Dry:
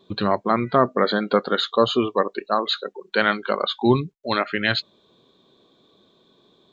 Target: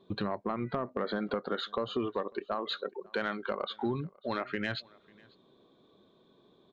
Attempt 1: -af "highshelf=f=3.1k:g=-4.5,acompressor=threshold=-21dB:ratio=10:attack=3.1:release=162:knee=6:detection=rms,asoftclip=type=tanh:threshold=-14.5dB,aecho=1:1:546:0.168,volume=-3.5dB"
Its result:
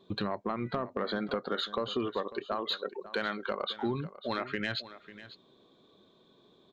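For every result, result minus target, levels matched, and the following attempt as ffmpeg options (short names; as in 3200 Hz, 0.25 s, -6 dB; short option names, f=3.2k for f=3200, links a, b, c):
echo-to-direct +10.5 dB; 8000 Hz band +4.5 dB
-af "highshelf=f=3.1k:g=-4.5,acompressor=threshold=-21dB:ratio=10:attack=3.1:release=162:knee=6:detection=rms,asoftclip=type=tanh:threshold=-14.5dB,aecho=1:1:546:0.0501,volume=-3.5dB"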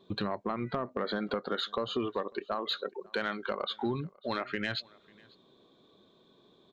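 8000 Hz band +4.5 dB
-af "highshelf=f=3.1k:g=-12.5,acompressor=threshold=-21dB:ratio=10:attack=3.1:release=162:knee=6:detection=rms,asoftclip=type=tanh:threshold=-14.5dB,aecho=1:1:546:0.0501,volume=-3.5dB"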